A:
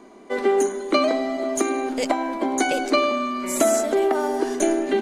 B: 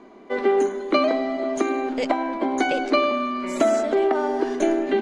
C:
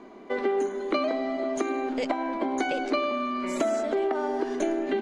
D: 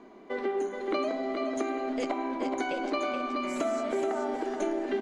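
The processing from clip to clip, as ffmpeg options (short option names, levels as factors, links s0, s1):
-af "lowpass=3900"
-af "acompressor=threshold=0.0398:ratio=2"
-af "flanger=delay=4.1:depth=9:regen=-80:speed=0.51:shape=triangular,aecho=1:1:426|852|1278|1704:0.531|0.175|0.0578|0.0191"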